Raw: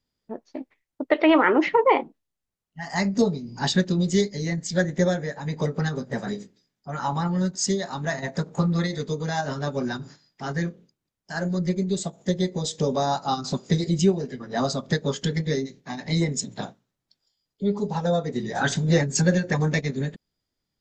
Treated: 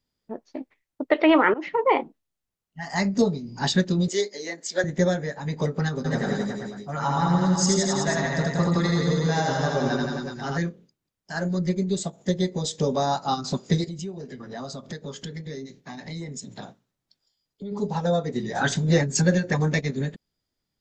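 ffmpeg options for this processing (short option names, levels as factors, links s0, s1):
-filter_complex "[0:a]asettb=1/sr,asplit=3[s0][s1][s2];[s0]atrim=end=4.084[s3];[s1]atrim=start=4.08:end=4.84,asetpts=PTS-STARTPTS,afade=t=in:d=0.004:c=qsin,afade=t=out:st=0.756:d=0.004:c=qsin,highpass=f=340:w=0.5412,highpass=f=340:w=1.3066[s4];[s2]atrim=start=4.836[s5];[s3][s4]acrossfade=d=0.004:c1=hsin:c2=qsin[s6];[s6][s5]acrossfade=d=0.004:c1=qsin:c2=hsin,asplit=3[s7][s8][s9];[s7]afade=t=out:st=6.04:d=0.02[s10];[s8]aecho=1:1:80|168|264.8|371.3|488.4:0.794|0.631|0.501|0.398|0.316,afade=t=in:st=6.04:d=0.02,afade=t=out:st=10.57:d=0.02[s11];[s9]afade=t=in:st=10.57:d=0.02[s12];[s10][s11][s12]amix=inputs=3:normalize=0,asplit=3[s13][s14][s15];[s13]afade=t=out:st=13.84:d=0.02[s16];[s14]acompressor=threshold=0.0178:ratio=3:attack=3.2:release=140:knee=1:detection=peak,afade=t=in:st=13.84:d=0.02,afade=t=out:st=17.71:d=0.02[s17];[s15]afade=t=in:st=17.71:d=0.02[s18];[s16][s17][s18]amix=inputs=3:normalize=0,asplit=2[s19][s20];[s19]atrim=end=1.54,asetpts=PTS-STARTPTS,afade=t=out:st=1.536:d=0.004:c=hsin:silence=0.112202[s21];[s20]atrim=start=1.54,asetpts=PTS-STARTPTS,afade=t=in:d=0.45:silence=0.112202[s22];[s21][s22]concat=n=2:v=0:a=1"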